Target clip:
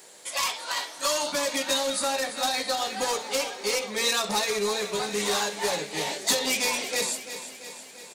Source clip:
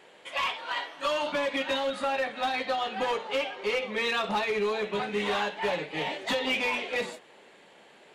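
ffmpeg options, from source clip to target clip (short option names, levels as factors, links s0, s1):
-filter_complex "[0:a]aexciter=amount=7.6:drive=7.1:freq=4400,asplit=2[s0][s1];[s1]aecho=0:1:340|680|1020|1360|1700|2040|2380:0.251|0.151|0.0904|0.0543|0.0326|0.0195|0.0117[s2];[s0][s2]amix=inputs=2:normalize=0"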